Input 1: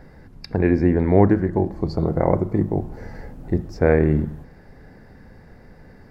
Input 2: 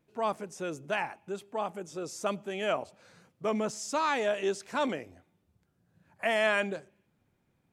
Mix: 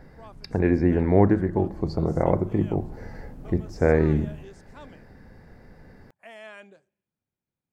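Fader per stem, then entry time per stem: −3.0, −17.0 decibels; 0.00, 0.00 seconds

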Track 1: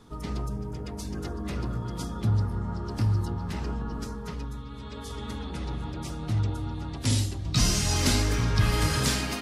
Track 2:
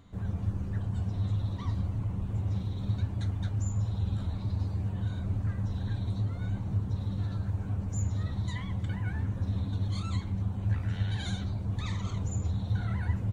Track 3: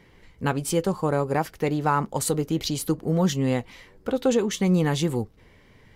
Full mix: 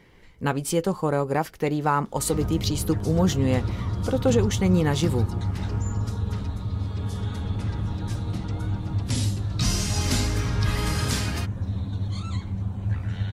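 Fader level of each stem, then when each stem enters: −1.5, +2.5, 0.0 decibels; 2.05, 2.20, 0.00 seconds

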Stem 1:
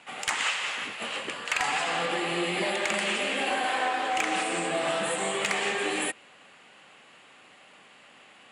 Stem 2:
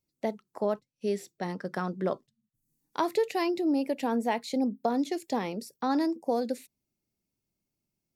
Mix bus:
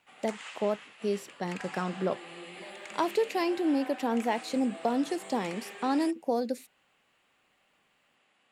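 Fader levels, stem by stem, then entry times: −16.5, −0.5 decibels; 0.00, 0.00 seconds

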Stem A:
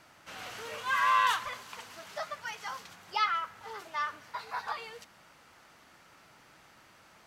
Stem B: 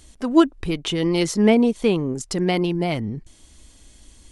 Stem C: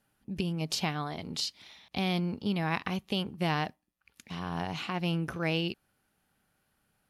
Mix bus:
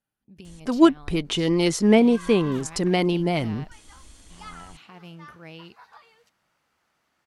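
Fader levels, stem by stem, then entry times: −14.0, −0.5, −13.0 decibels; 1.25, 0.45, 0.00 seconds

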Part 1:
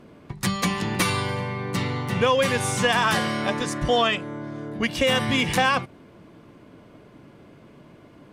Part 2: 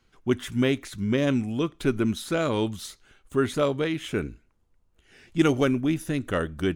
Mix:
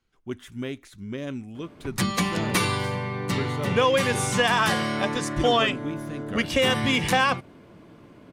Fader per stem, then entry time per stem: −0.5, −9.5 decibels; 1.55, 0.00 seconds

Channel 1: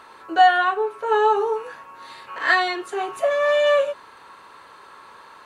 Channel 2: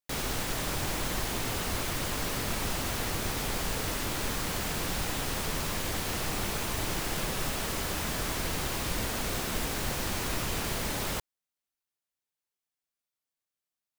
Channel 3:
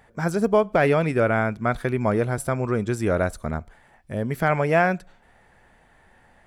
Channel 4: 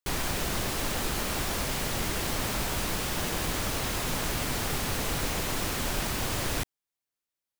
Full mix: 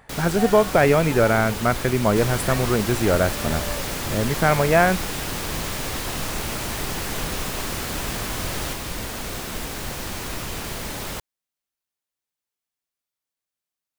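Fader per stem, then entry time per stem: −17.5, +1.5, +2.5, −0.5 decibels; 0.00, 0.00, 0.00, 2.10 seconds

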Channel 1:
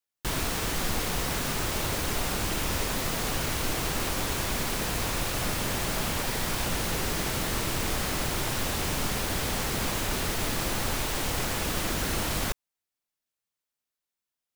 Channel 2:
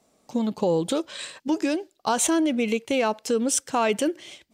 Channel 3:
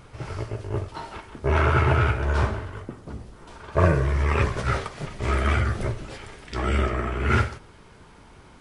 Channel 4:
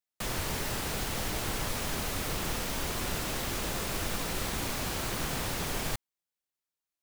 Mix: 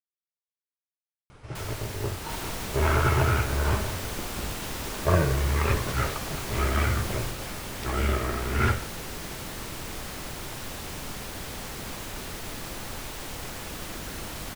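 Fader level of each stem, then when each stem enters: −7.5 dB, muted, −3.0 dB, −4.5 dB; 2.05 s, muted, 1.30 s, 1.35 s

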